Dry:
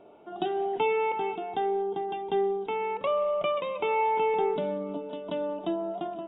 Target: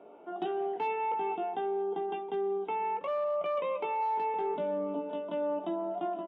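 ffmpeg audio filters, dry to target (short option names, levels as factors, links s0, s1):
-filter_complex "[0:a]asplit=2[s0][s1];[s1]adelay=17,volume=0.501[s2];[s0][s2]amix=inputs=2:normalize=0,asoftclip=type=hard:threshold=0.106,acrossover=split=180 2800:gain=0.126 1 0.178[s3][s4][s5];[s3][s4][s5]amix=inputs=3:normalize=0,areverse,acompressor=threshold=0.0355:ratio=6,areverse"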